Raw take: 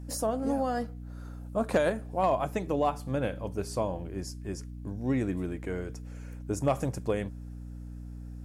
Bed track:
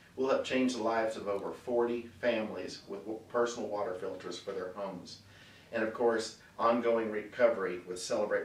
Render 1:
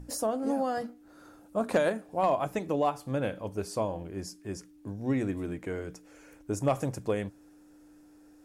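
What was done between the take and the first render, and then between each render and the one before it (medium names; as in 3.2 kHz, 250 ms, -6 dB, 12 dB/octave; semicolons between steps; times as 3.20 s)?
hum notches 60/120/180/240 Hz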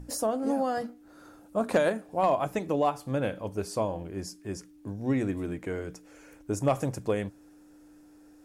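trim +1.5 dB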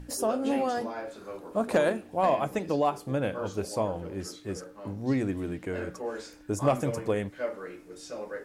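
add bed track -6 dB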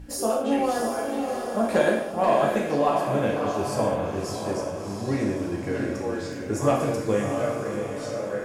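on a send: echo that smears into a reverb 672 ms, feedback 47%, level -5.5 dB; on the sum: gated-style reverb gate 250 ms falling, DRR -1.5 dB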